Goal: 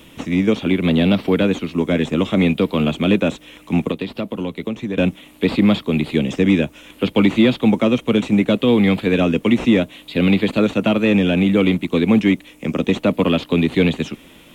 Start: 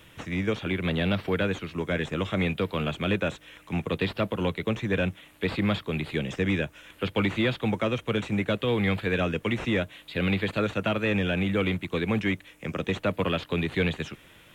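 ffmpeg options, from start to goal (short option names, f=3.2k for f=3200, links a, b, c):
-filter_complex "[0:a]equalizer=f=100:t=o:w=0.67:g=-8,equalizer=f=250:t=o:w=0.67:g=9,equalizer=f=1.6k:t=o:w=0.67:g=-8,asettb=1/sr,asplit=3[a][b][c];[a]atrim=end=3.914[d];[b]atrim=start=3.91:end=4.98,asetpts=PTS-STARTPTS,afade=t=in:d=0.004:c=qsin,afade=t=out:st=1.066:d=0.004:c=qsin,acompressor=threshold=-31dB:ratio=4[e];[c]atrim=start=4.976[f];[d][e]acrossfade=d=0.004:c1=hsin:c2=qsin[g];[g][f]acrossfade=d=0.004:c1=qsin:c2=hsin,volume=8.5dB"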